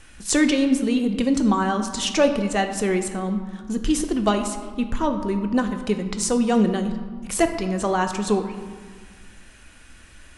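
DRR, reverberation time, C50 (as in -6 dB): 6.0 dB, 1.6 s, 8.5 dB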